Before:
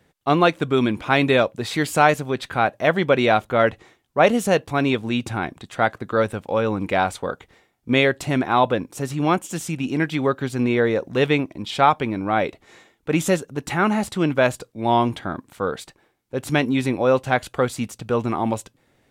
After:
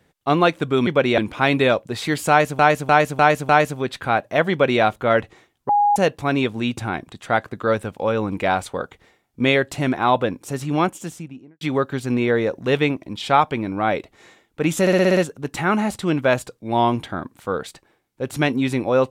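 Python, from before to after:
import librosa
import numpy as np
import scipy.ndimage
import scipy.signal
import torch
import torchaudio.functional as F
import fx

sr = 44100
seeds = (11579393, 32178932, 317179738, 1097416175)

y = fx.studio_fade_out(x, sr, start_s=9.29, length_s=0.81)
y = fx.edit(y, sr, fx.repeat(start_s=1.98, length_s=0.3, count=5),
    fx.duplicate(start_s=3.0, length_s=0.31, to_s=0.87),
    fx.bleep(start_s=4.18, length_s=0.27, hz=823.0, db=-13.0),
    fx.stutter(start_s=13.3, slice_s=0.06, count=7), tone=tone)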